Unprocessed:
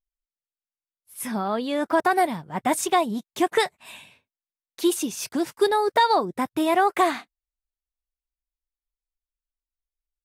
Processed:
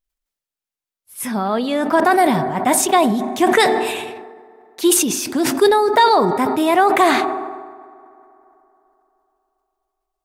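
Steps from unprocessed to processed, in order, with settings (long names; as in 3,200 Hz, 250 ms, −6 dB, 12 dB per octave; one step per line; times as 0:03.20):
on a send at −14 dB: low-pass filter 1,500 Hz 6 dB per octave + convolution reverb RT60 3.4 s, pre-delay 4 ms
on the sum: level that may fall only so fast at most 39 dB per second
level +5.5 dB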